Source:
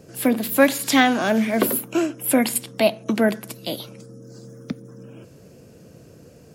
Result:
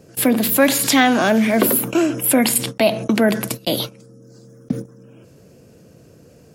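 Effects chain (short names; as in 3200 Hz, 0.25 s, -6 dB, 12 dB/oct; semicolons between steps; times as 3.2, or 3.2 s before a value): gate -34 dBFS, range -37 dB; fast leveller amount 50%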